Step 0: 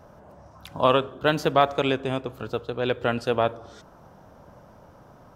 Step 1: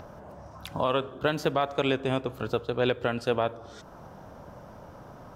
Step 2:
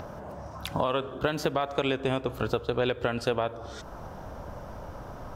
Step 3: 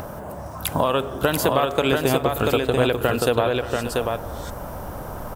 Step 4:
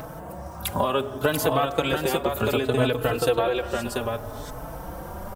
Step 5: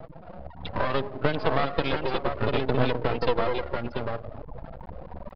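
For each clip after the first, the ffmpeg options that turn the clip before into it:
ffmpeg -i in.wav -filter_complex "[0:a]acrossover=split=5600[link_01][link_02];[link_01]acompressor=mode=upward:threshold=-44dB:ratio=2.5[link_03];[link_03][link_02]amix=inputs=2:normalize=0,alimiter=limit=-16dB:level=0:latency=1:release=454,volume=2.5dB" out.wav
ffmpeg -i in.wav -af "asubboost=boost=3.5:cutoff=75,acompressor=threshold=-28dB:ratio=6,volume=5dB" out.wav
ffmpeg -i in.wav -af "aexciter=amount=6.1:drive=2.5:freq=7800,aecho=1:1:580|687:0.2|0.668,volume=6.5dB" out.wav
ffmpeg -i in.wav -filter_complex "[0:a]asplit=2[link_01][link_02];[link_02]adelay=4.1,afreqshift=0.65[link_03];[link_01][link_03]amix=inputs=2:normalize=1" out.wav
ffmpeg -i in.wav -af "afftfilt=real='re*gte(hypot(re,im),0.0562)':imag='im*gte(hypot(re,im),0.0562)':win_size=1024:overlap=0.75,aeval=exprs='max(val(0),0)':channel_layout=same,aresample=11025,aresample=44100,volume=2dB" out.wav

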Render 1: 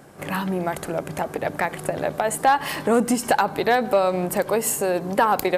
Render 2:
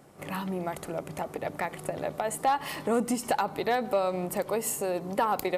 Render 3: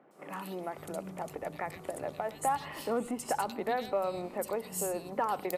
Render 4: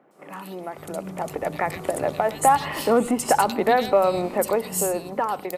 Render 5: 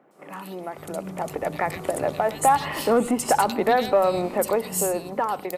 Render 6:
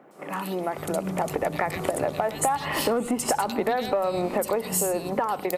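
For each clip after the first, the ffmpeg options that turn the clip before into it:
ffmpeg -i in.wav -af "bandreject=frequency=1600:width=8.5,volume=-7.5dB" out.wav
ffmpeg -i in.wav -filter_complex "[0:a]acrossover=split=190|2600[link_01][link_02][link_03];[link_03]adelay=110[link_04];[link_01]adelay=580[link_05];[link_05][link_02][link_04]amix=inputs=3:normalize=0,volume=-4.5dB" out.wav
ffmpeg -i in.wav -af "dynaudnorm=framelen=340:gausssize=7:maxgain=10dB,volume=3dB" out.wav
ffmpeg -i in.wav -af "asoftclip=type=tanh:threshold=-7.5dB" out.wav
ffmpeg -i in.wav -af "acompressor=threshold=-28dB:ratio=6,volume=6dB" out.wav

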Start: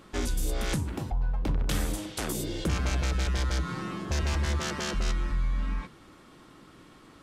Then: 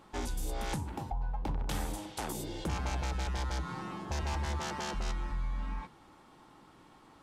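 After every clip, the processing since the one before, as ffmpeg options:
ffmpeg -i in.wav -af "equalizer=frequency=850:width_type=o:width=0.45:gain=12,volume=-7dB" out.wav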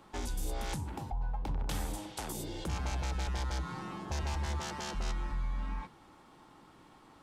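ffmpeg -i in.wav -filter_complex "[0:a]acrossover=split=150|3000[link_01][link_02][link_03];[link_02]acompressor=threshold=-38dB:ratio=6[link_04];[link_01][link_04][link_03]amix=inputs=3:normalize=0" out.wav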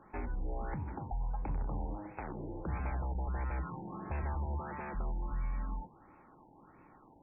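ffmpeg -i in.wav -af "afftfilt=real='re*lt(b*sr/1024,970*pow(2700/970,0.5+0.5*sin(2*PI*1.5*pts/sr)))':imag='im*lt(b*sr/1024,970*pow(2700/970,0.5+0.5*sin(2*PI*1.5*pts/sr)))':win_size=1024:overlap=0.75,volume=-1dB" out.wav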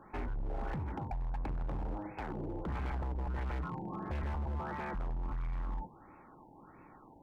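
ffmpeg -i in.wav -af "asoftclip=type=hard:threshold=-36.5dB,volume=3dB" out.wav

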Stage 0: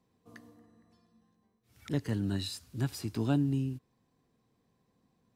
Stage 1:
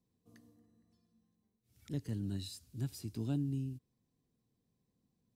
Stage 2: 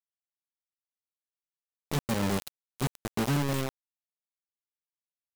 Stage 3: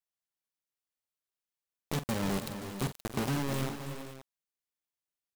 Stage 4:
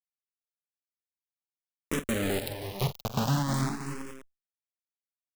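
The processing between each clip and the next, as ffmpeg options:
ffmpeg -i in.wav -af "equalizer=frequency=1200:width_type=o:width=2.8:gain=-12,volume=-4.5dB" out.wav
ffmpeg -i in.wav -filter_complex "[0:a]aecho=1:1:5.1:0.57,acrossover=split=110|2600[link_01][link_02][link_03];[link_01]alimiter=level_in=25dB:limit=-24dB:level=0:latency=1:release=124,volume=-25dB[link_04];[link_04][link_02][link_03]amix=inputs=3:normalize=0,acrusher=bits=5:mix=0:aa=0.000001,volume=7.5dB" out.wav
ffmpeg -i in.wav -filter_complex "[0:a]acompressor=threshold=-28dB:ratio=6,asplit=2[link_01][link_02];[link_02]aecho=0:1:46|324|418|525:0.251|0.316|0.224|0.211[link_03];[link_01][link_03]amix=inputs=2:normalize=0" out.wav
ffmpeg -i in.wav -filter_complex "[0:a]acrusher=bits=7:mix=0:aa=0.000001,asplit=2[link_01][link_02];[link_02]afreqshift=0.44[link_03];[link_01][link_03]amix=inputs=2:normalize=1,volume=7dB" out.wav

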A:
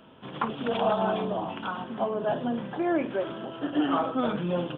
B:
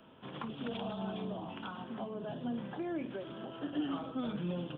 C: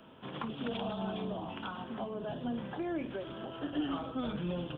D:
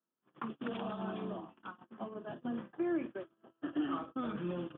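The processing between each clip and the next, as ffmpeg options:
ffmpeg -i in.wav -filter_complex "[0:a]acrossover=split=290|3000[link_01][link_02][link_03];[link_02]acompressor=threshold=-37dB:ratio=6[link_04];[link_01][link_04][link_03]amix=inputs=3:normalize=0,volume=-5.5dB" out.wav
ffmpeg -i in.wav -af "asubboost=boost=5.5:cutoff=76,volume=3dB" out.wav
ffmpeg -i in.wav -af "agate=range=-37dB:threshold=-38dB:ratio=16:detection=peak,highpass=100,equalizer=frequency=110:width_type=q:width=4:gain=-4,equalizer=frequency=220:width_type=q:width=4:gain=3,equalizer=frequency=340:width_type=q:width=4:gain=8,equalizer=frequency=1200:width_type=q:width=4:gain=8,equalizer=frequency=1700:width_type=q:width=4:gain=5,lowpass=frequency=3100:width=0.5412,lowpass=frequency=3100:width=1.3066,volume=-4.5dB" out.wav

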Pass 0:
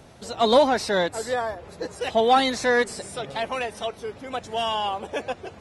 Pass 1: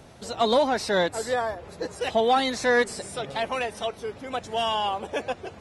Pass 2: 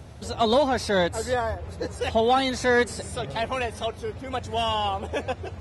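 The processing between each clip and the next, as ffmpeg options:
ffmpeg -i in.wav -af "alimiter=limit=-12.5dB:level=0:latency=1:release=443" out.wav
ffmpeg -i in.wav -af "equalizer=frequency=81:width=1.1:gain=15" out.wav

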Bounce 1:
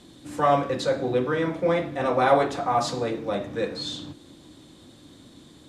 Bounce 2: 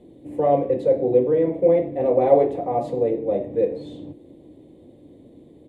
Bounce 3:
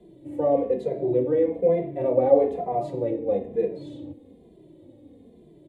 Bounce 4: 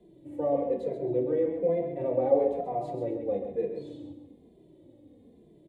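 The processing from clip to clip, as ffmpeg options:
ffmpeg -i in.wav -af "firequalizer=gain_entry='entry(210,0);entry(460,9);entry(1400,-25);entry(2000,-9);entry(5300,-28);entry(9700,-14)':delay=0.05:min_phase=1" out.wav
ffmpeg -i in.wav -filter_complex "[0:a]acrossover=split=220|930[link_01][link_02][link_03];[link_03]alimiter=level_in=7.5dB:limit=-24dB:level=0:latency=1,volume=-7.5dB[link_04];[link_01][link_02][link_04]amix=inputs=3:normalize=0,asplit=2[link_05][link_06];[link_06]adelay=2.5,afreqshift=-1.1[link_07];[link_05][link_07]amix=inputs=2:normalize=1" out.wav
ffmpeg -i in.wav -af "aecho=1:1:133|266|399:0.422|0.114|0.0307,volume=-6dB" out.wav

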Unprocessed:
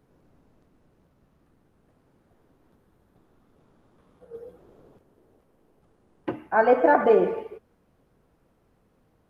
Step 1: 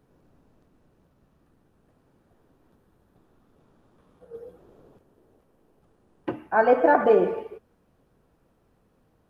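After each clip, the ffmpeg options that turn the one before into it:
ffmpeg -i in.wav -af "bandreject=frequency=2100:width=17" out.wav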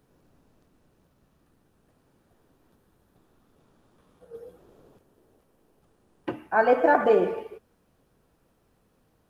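ffmpeg -i in.wav -af "highshelf=frequency=2400:gain=7.5,volume=-2dB" out.wav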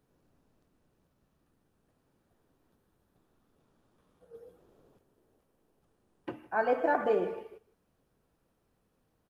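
ffmpeg -i in.wav -af "aecho=1:1:158:0.0841,volume=-8dB" out.wav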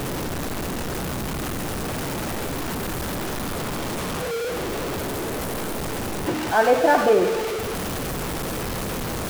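ffmpeg -i in.wav -af "aeval=exprs='val(0)+0.5*0.0316*sgn(val(0))':channel_layout=same,volume=8.5dB" out.wav

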